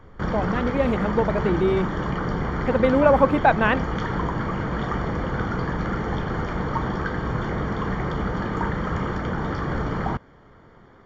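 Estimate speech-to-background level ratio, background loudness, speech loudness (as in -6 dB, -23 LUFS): 5.0 dB, -27.0 LUFS, -22.0 LUFS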